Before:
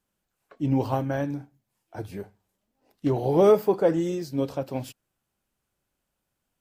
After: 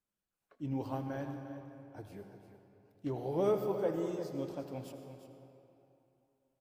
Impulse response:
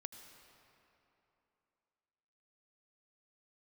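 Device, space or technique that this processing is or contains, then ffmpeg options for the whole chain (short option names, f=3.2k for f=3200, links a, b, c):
cave: -filter_complex "[0:a]aecho=1:1:350:0.266[a];[1:a]atrim=start_sample=2205[b];[a][b]afir=irnorm=-1:irlink=0,volume=-8dB"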